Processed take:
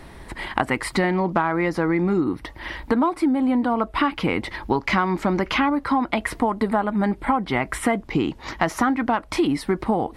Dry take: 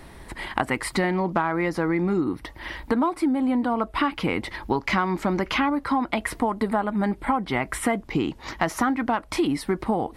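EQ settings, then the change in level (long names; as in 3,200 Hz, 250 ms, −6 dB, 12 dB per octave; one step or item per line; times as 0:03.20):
high-shelf EQ 7,900 Hz −5.5 dB
+2.5 dB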